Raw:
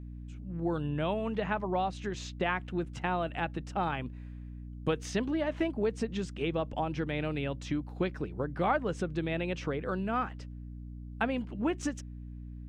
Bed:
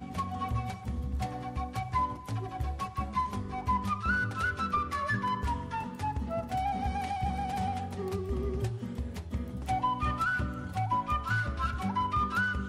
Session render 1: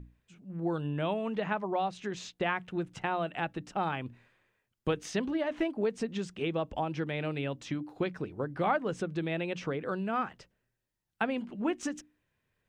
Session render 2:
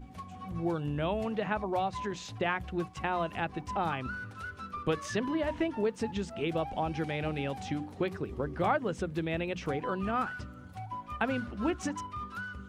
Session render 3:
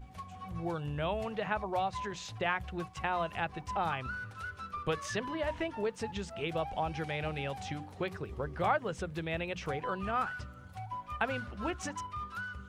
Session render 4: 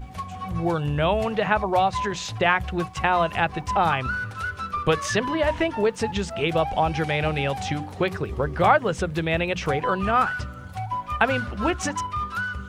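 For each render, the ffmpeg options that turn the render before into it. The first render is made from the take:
-af "bandreject=f=60:t=h:w=6,bandreject=f=120:t=h:w=6,bandreject=f=180:t=h:w=6,bandreject=f=240:t=h:w=6,bandreject=f=300:t=h:w=6"
-filter_complex "[1:a]volume=-10.5dB[a];[0:a][a]amix=inputs=2:normalize=0"
-af "equalizer=f=270:w=1.3:g=-9.5"
-af "volume=12dB"

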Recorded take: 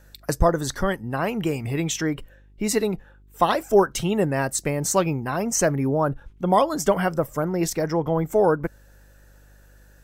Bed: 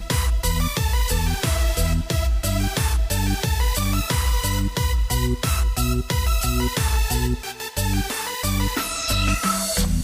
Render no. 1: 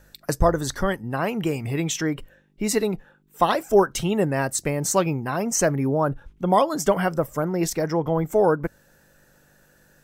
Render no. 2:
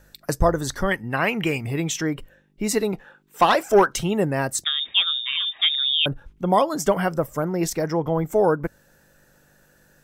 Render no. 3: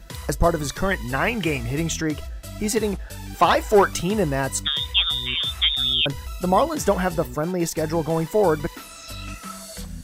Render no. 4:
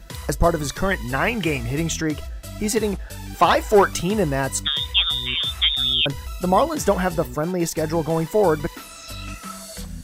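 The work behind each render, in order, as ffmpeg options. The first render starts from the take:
-af "bandreject=f=50:t=h:w=4,bandreject=f=100:t=h:w=4"
-filter_complex "[0:a]asettb=1/sr,asplit=3[a][b][c];[a]atrim=end=0.914[d];[b]atrim=start=0.91:end=1.58,asetpts=PTS-STARTPTS,afade=t=in:d=0.004:c=qsin,afade=t=out:st=0.666:d=0.004:c=qsin,equalizer=f=2.2k:t=o:w=1.1:g=12[e];[c]atrim=start=1.576[f];[d][e]acrossfade=d=0.004:c1=hsin:c2=qsin[g];[g][f]acrossfade=d=0.004:c1=qsin:c2=hsin,asettb=1/sr,asplit=3[h][i][j];[h]atrim=end=2.934[k];[i]atrim=start=2.93:end=3.96,asetpts=PTS-STARTPTS,afade=t=in:d=0.004:c=qsin,afade=t=out:st=1.026:d=0.004:c=qsin,asplit=2[l][m];[m]highpass=f=720:p=1,volume=13dB,asoftclip=type=tanh:threshold=-5.5dB[n];[l][n]amix=inputs=2:normalize=0,lowpass=f=5.4k:p=1,volume=-6dB[o];[j]atrim=start=3.956[p];[k][o]acrossfade=d=0.004:c1=hsin:c2=qsin[q];[q][p]acrossfade=d=0.004:c1=qsin:c2=hsin,asettb=1/sr,asplit=3[r][s][t];[r]atrim=end=4.644[u];[s]atrim=start=4.64:end=6.06,asetpts=PTS-STARTPTS,afade=t=in:d=0.004:c=qsin,afade=t=out:st=1.416:d=0.004:c=qsin,lowpass=f=3.2k:t=q:w=0.5098,lowpass=f=3.2k:t=q:w=0.6013,lowpass=f=3.2k:t=q:w=0.9,lowpass=f=3.2k:t=q:w=2.563,afreqshift=-3800[v];[t]atrim=start=6.056[w];[u][v]acrossfade=d=0.004:c1=hsin:c2=qsin[x];[x][w]acrossfade=d=0.004:c1=qsin:c2=hsin"
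-filter_complex "[1:a]volume=-14dB[a];[0:a][a]amix=inputs=2:normalize=0"
-af "volume=1dB"

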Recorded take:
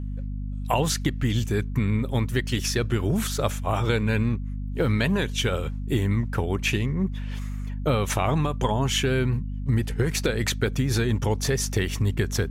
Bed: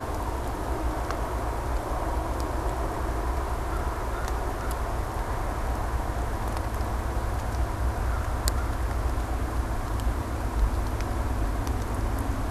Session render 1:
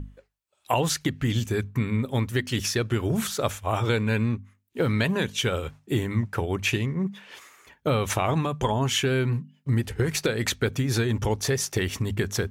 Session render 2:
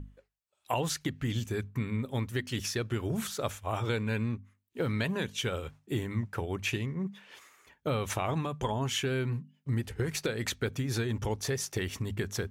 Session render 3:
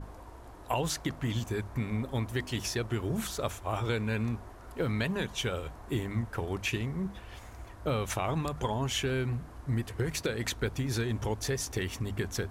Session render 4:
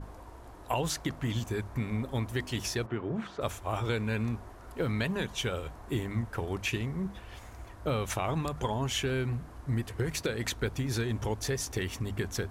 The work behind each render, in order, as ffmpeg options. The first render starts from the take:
-af "bandreject=f=50:t=h:w=6,bandreject=f=100:t=h:w=6,bandreject=f=150:t=h:w=6,bandreject=f=200:t=h:w=6,bandreject=f=250:t=h:w=6"
-af "volume=-7dB"
-filter_complex "[1:a]volume=-18.5dB[a];[0:a][a]amix=inputs=2:normalize=0"
-filter_complex "[0:a]asplit=3[a][b][c];[a]afade=t=out:st=2.85:d=0.02[d];[b]highpass=140,lowpass=2.1k,afade=t=in:st=2.85:d=0.02,afade=t=out:st=3.4:d=0.02[e];[c]afade=t=in:st=3.4:d=0.02[f];[d][e][f]amix=inputs=3:normalize=0"

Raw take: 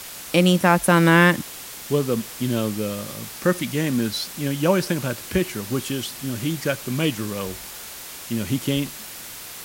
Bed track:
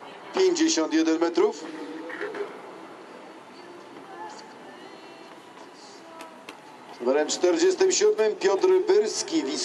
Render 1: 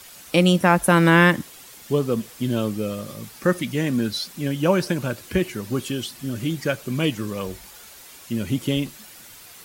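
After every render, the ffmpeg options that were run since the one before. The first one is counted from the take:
-af "afftdn=nr=9:nf=-37"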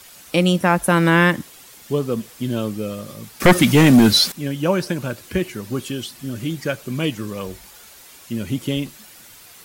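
-filter_complex "[0:a]asettb=1/sr,asplit=3[a][b][c];[a]atrim=end=3.404[d];[b]atrim=start=3.4:end=4.32,asetpts=PTS-STARTPTS,afade=t=in:d=0.004:c=qsin,afade=t=out:st=0.916:d=0.004:c=qsin,aeval=exprs='0.531*sin(PI/2*3.16*val(0)/0.531)':c=same[e];[c]atrim=start=4.316[f];[d][e]acrossfade=d=0.004:c1=hsin:c2=qsin[g];[g][f]acrossfade=d=0.004:c1=qsin:c2=hsin,asettb=1/sr,asplit=3[h][i][j];[h]atrim=end=5.024[k];[i]atrim=start=5.02:end=5.58,asetpts=PTS-STARTPTS,afade=t=in:d=0.004:c=qsin,afade=t=out:st=0.556:d=0.004:c=qsin,acrusher=bits=9:mode=log:mix=0:aa=0.000001[l];[j]atrim=start=5.576[m];[k][l]acrossfade=d=0.004:c1=hsin:c2=qsin[n];[n][m]acrossfade=d=0.004:c1=qsin:c2=hsin"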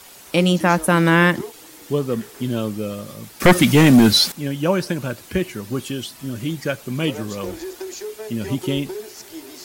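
-filter_complex "[1:a]volume=-11.5dB[a];[0:a][a]amix=inputs=2:normalize=0"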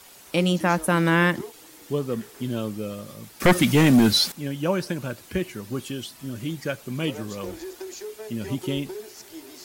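-af "volume=-5dB"

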